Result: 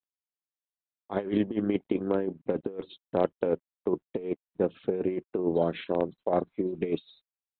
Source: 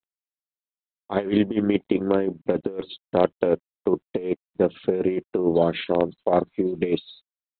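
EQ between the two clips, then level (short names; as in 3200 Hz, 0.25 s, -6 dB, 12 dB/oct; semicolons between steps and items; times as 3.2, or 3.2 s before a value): high shelf 3600 Hz -9.5 dB; -6.0 dB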